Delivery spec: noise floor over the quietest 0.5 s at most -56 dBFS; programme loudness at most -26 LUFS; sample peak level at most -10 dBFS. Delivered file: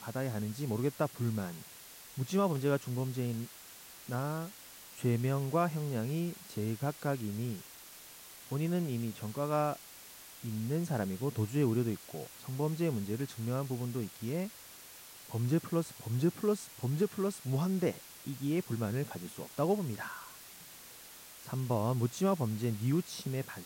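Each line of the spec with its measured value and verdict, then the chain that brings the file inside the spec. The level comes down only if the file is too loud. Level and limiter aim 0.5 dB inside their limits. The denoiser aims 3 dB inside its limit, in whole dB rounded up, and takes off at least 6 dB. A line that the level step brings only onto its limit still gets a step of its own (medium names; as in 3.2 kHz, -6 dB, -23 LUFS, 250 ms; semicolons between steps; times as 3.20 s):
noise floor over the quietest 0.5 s -52 dBFS: fail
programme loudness -35.0 LUFS: pass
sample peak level -19.0 dBFS: pass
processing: noise reduction 7 dB, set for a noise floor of -52 dBFS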